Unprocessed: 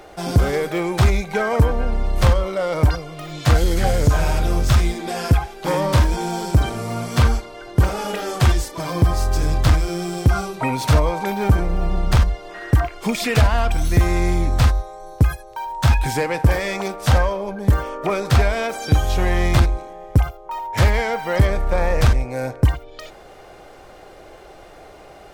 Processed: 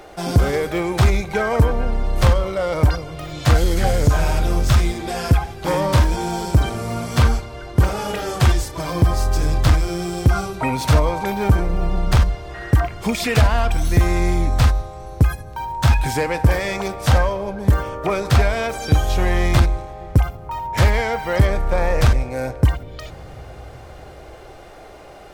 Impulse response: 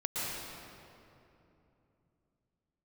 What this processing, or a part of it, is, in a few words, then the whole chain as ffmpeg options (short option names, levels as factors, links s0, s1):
compressed reverb return: -filter_complex "[0:a]asplit=2[s0][s1];[1:a]atrim=start_sample=2205[s2];[s1][s2]afir=irnorm=-1:irlink=0,acompressor=threshold=0.126:ratio=6,volume=0.168[s3];[s0][s3]amix=inputs=2:normalize=0"